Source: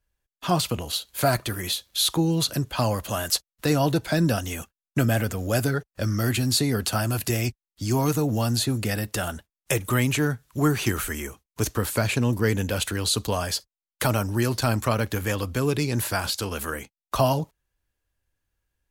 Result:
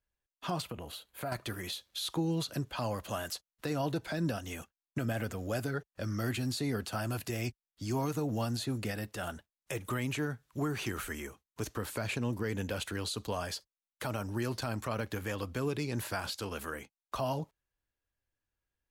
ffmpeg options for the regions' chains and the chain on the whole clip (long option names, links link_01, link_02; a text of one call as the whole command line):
ffmpeg -i in.wav -filter_complex "[0:a]asettb=1/sr,asplit=3[link_01][link_02][link_03];[link_01]atrim=end=0.624[link_04];[link_02]atrim=start=0.62:end=1.32,asetpts=PTS-STARTPTS,afade=type=in:duration=0.004:curve=qsin,afade=type=out:start_time=0.696:duration=0.004:curve=qsin,equalizer=frequency=5400:width_type=o:width=1.3:gain=-10,acompressor=threshold=-29dB:ratio=2.5:attack=3.2:release=140:knee=1:detection=peak[link_05];[link_03]atrim=start=1.316[link_06];[link_04][link_05]acrossfade=duration=0.004:curve1=hsin:curve2=qsin[link_07];[link_07][link_06]acrossfade=duration=0.004:curve1=qsin:curve2=hsin,lowshelf=frequency=120:gain=-6,alimiter=limit=-16.5dB:level=0:latency=1:release=113,highshelf=frequency=5600:gain=-7.5,volume=-7dB" out.wav